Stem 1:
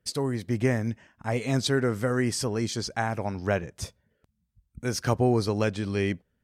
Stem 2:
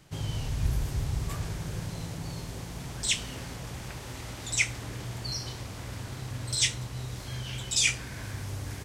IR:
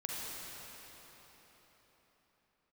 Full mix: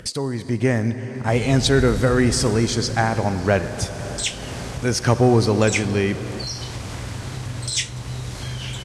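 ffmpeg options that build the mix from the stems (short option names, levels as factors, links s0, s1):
-filter_complex "[0:a]dynaudnorm=f=270:g=5:m=2.11,volume=1.06,asplit=2[s0][s1];[s1]volume=0.282[s2];[1:a]adelay=1150,volume=1.33[s3];[2:a]atrim=start_sample=2205[s4];[s2][s4]afir=irnorm=-1:irlink=0[s5];[s0][s3][s5]amix=inputs=3:normalize=0,lowpass=f=11000:w=0.5412,lowpass=f=11000:w=1.3066,acompressor=mode=upward:threshold=0.0794:ratio=2.5,asoftclip=type=tanh:threshold=0.596"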